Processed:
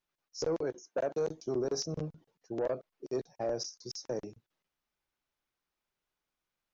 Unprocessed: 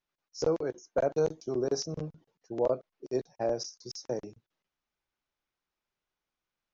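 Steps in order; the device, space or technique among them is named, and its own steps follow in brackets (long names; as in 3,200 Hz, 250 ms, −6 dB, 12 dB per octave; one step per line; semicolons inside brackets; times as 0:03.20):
0:00.76–0:01.29: high-pass filter 150 Hz
soft clipper into limiter (soft clipping −20.5 dBFS, distortion −18 dB; brickwall limiter −25 dBFS, peak gain reduction 3.5 dB)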